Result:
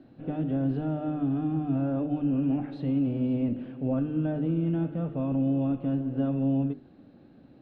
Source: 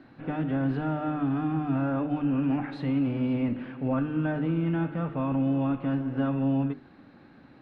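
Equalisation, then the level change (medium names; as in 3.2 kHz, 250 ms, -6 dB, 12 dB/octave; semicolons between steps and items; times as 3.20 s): high-order bell 1.4 kHz -10 dB; treble shelf 3.4 kHz -11 dB; 0.0 dB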